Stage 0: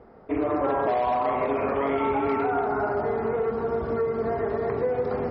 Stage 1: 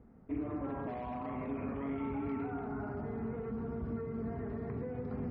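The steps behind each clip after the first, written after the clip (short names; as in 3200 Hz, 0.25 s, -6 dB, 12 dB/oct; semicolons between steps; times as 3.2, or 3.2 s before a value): EQ curve 260 Hz 0 dB, 370 Hz -12 dB, 600 Hz -16 dB, 2500 Hz -12 dB, 3800 Hz -19 dB; in parallel at -1 dB: limiter -30 dBFS, peak gain reduction 8 dB; on the sum: gain -8 dB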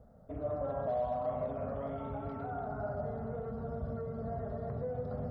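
EQ curve 150 Hz 0 dB, 350 Hz -14 dB, 600 Hz +12 dB, 940 Hz -5 dB, 1400 Hz -1 dB, 2400 Hz -16 dB, 3500 Hz +2 dB; gain +2 dB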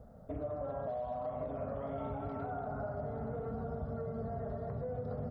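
compressor, threshold -40 dBFS, peak gain reduction 10 dB; outdoor echo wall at 190 m, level -10 dB; gain +4 dB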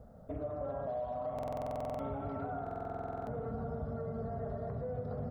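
reverb RT60 2.8 s, pre-delay 15 ms, DRR 12.5 dB; stuck buffer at 1.34/2.62, samples 2048, times 13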